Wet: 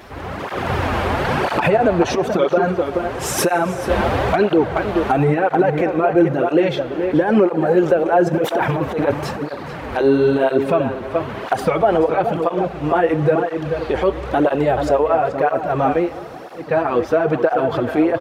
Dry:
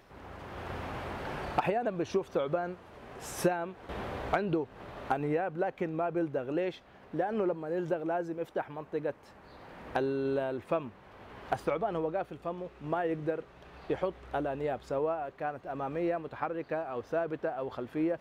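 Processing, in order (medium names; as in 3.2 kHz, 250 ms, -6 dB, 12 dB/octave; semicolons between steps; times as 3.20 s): 8.26–10.11 s: transient shaper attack -12 dB, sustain +10 dB; echo from a far wall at 74 m, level -9 dB; 16.02–16.68 s: room tone, crossfade 0.24 s; reverberation RT60 4.5 s, pre-delay 23 ms, DRR 15.5 dB; loudness maximiser +24.5 dB; cancelling through-zero flanger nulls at 1 Hz, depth 7.5 ms; trim -3 dB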